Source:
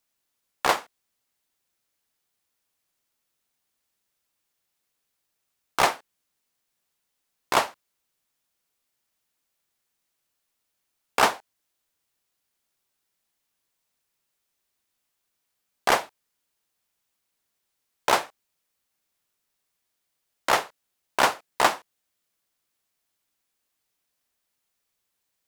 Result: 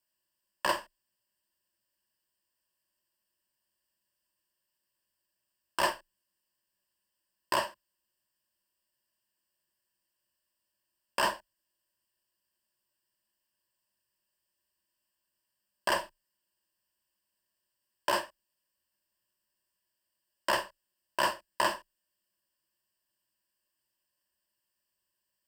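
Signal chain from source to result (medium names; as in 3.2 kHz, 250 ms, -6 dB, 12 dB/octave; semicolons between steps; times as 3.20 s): rippled EQ curve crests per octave 1.3, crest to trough 14 dB; peak limiter -8.5 dBFS, peak gain reduction 5.5 dB; trim -7 dB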